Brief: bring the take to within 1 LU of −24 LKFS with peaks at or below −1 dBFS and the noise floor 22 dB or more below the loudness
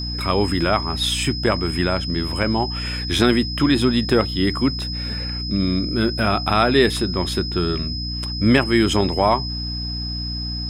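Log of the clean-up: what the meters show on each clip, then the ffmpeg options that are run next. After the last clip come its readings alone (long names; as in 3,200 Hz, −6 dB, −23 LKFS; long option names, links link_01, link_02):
mains hum 60 Hz; hum harmonics up to 300 Hz; level of the hum −26 dBFS; interfering tone 5,100 Hz; level of the tone −28 dBFS; integrated loudness −20.0 LKFS; sample peak −1.5 dBFS; target loudness −24.0 LKFS
→ -af "bandreject=frequency=60:width_type=h:width=4,bandreject=frequency=120:width_type=h:width=4,bandreject=frequency=180:width_type=h:width=4,bandreject=frequency=240:width_type=h:width=4,bandreject=frequency=300:width_type=h:width=4"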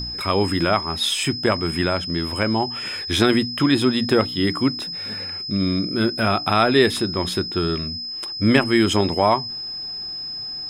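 mains hum none found; interfering tone 5,100 Hz; level of the tone −28 dBFS
→ -af "bandreject=frequency=5100:width=30"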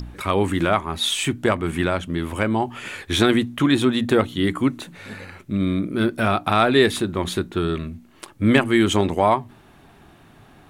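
interfering tone none found; integrated loudness −21.0 LKFS; sample peak −1.5 dBFS; target loudness −24.0 LKFS
→ -af "volume=-3dB"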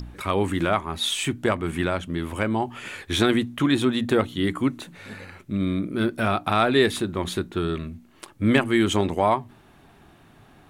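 integrated loudness −24.0 LKFS; sample peak −4.5 dBFS; background noise floor −53 dBFS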